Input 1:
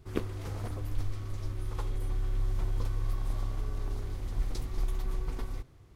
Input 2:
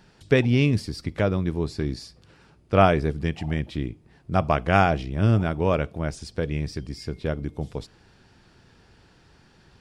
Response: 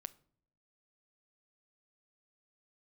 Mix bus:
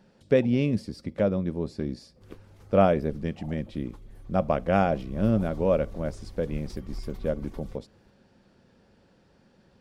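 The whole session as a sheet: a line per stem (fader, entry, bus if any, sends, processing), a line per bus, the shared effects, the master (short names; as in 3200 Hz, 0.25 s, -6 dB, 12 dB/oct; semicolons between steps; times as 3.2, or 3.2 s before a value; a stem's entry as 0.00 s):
4.86 s -13.5 dB -> 5.21 s -5.5 dB, 2.15 s, no send, reverb removal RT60 0.52 s
-10.0 dB, 0.00 s, no send, bell 480 Hz +6 dB 1.9 oct; small resonant body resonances 210/540 Hz, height 10 dB, ringing for 45 ms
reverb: off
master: dry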